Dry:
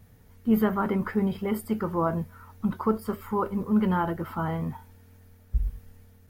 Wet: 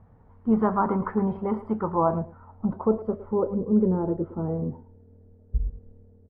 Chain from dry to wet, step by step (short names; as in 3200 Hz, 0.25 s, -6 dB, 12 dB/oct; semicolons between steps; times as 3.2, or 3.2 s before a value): speakerphone echo 0.11 s, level -13 dB; low-pass sweep 1000 Hz -> 450 Hz, 1.7–3.94